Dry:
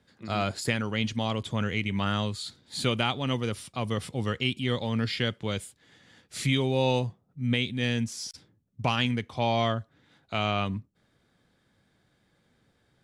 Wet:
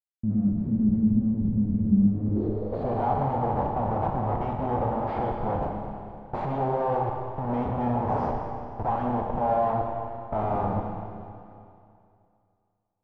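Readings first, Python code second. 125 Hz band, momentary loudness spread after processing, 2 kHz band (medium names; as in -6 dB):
+1.0 dB, 11 LU, -13.0 dB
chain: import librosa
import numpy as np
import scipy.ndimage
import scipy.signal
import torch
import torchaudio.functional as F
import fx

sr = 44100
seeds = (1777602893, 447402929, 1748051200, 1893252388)

y = fx.schmitt(x, sr, flips_db=-37.0)
y = fx.rev_schroeder(y, sr, rt60_s=2.5, comb_ms=29, drr_db=1.0)
y = fx.filter_sweep_lowpass(y, sr, from_hz=210.0, to_hz=830.0, start_s=2.11, end_s=3.03, q=3.9)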